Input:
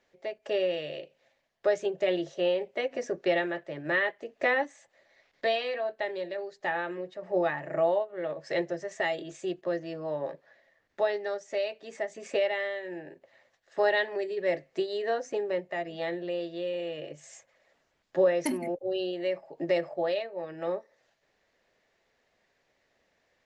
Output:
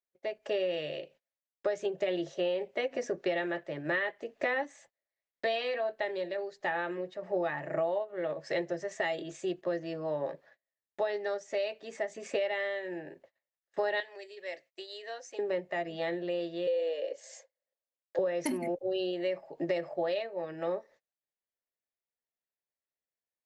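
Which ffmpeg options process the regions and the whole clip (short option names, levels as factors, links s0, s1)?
-filter_complex "[0:a]asettb=1/sr,asplit=3[s0][s1][s2];[s0]atrim=end=14.004[s3];[s1]atrim=start=14:end=15.39,asetpts=PTS-STARTPTS,afade=t=in:d=0.004:c=qsin,afade=t=out:st=1.386:d=0.004:c=qsin,highpass=890,equalizer=f=1200:t=o:w=2.1:g=-9.5[s4];[s2]atrim=start=15.386[s5];[s3][s4]acrossfade=d=0.004:c1=hsin:c2=qsin[s6];[s6][s5]acrossfade=d=0.004:c1=qsin:c2=hsin,asettb=1/sr,asplit=3[s7][s8][s9];[s7]atrim=end=16.674[s10];[s8]atrim=start=16.67:end=18.19,asetpts=PTS-STARTPTS,afade=t=in:d=0.004:c=qsin,afade=t=out:st=1.516:d=0.004:c=qsin,highpass=f=440:w=0.5412,highpass=f=440:w=1.3066,equalizer=f=550:t=q:w=4:g=10,equalizer=f=1300:t=q:w=4:g=-7,equalizer=f=2600:t=q:w=4:g=-4,equalizer=f=4600:t=q:w=4:g=6,lowpass=f=8000:w=0.5412,lowpass=f=8000:w=1.3066,afreqshift=-17[s11];[s9]atrim=start=18.186[s12];[s10][s11]acrossfade=d=0.004:c1=hsin:c2=qsin[s13];[s13][s12]acrossfade=d=0.004:c1=qsin:c2=hsin,agate=range=0.0282:threshold=0.00158:ratio=16:detection=peak,acompressor=threshold=0.0447:ratio=6"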